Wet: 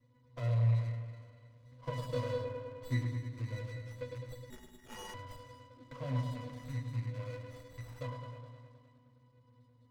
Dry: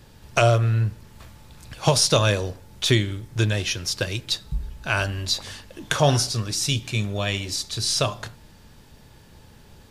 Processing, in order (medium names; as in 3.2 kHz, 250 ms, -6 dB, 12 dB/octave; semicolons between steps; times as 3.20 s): rattle on loud lows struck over -25 dBFS, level -14 dBFS; high-pass 110 Hz 6 dB/octave; bass shelf 380 Hz -5.5 dB; pitch-class resonator B, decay 0.27 s; on a send: feedback echo behind a low-pass 104 ms, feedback 72%, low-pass 1.8 kHz, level -5.5 dB; on the sum: spring tank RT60 2.2 s, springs 43 ms, chirp 40 ms, DRR 9 dB; 4.50–5.14 s: frequency inversion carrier 3.9 kHz; sliding maximum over 9 samples